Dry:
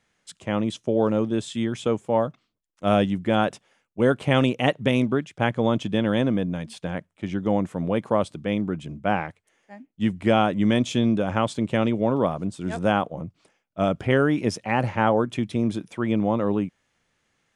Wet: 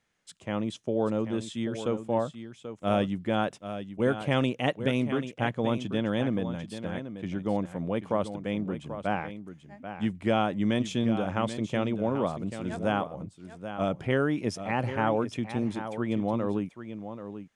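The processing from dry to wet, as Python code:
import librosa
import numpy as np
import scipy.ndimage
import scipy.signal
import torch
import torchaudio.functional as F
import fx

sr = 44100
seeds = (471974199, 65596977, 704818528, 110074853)

y = x + 10.0 ** (-10.5 / 20.0) * np.pad(x, (int(786 * sr / 1000.0), 0))[:len(x)]
y = F.gain(torch.from_numpy(y), -6.0).numpy()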